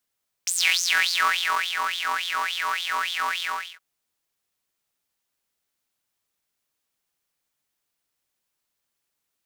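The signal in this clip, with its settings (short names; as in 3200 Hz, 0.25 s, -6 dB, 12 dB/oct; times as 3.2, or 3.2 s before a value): synth patch with filter wobble F2, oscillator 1 square, interval +7 st, noise -26.5 dB, filter highpass, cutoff 1800 Hz, Q 8.9, filter envelope 1.5 oct, filter decay 0.88 s, filter sustain 5%, attack 1.8 ms, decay 1.25 s, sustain -9.5 dB, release 0.36 s, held 2.96 s, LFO 3.5 Hz, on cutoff 0.9 oct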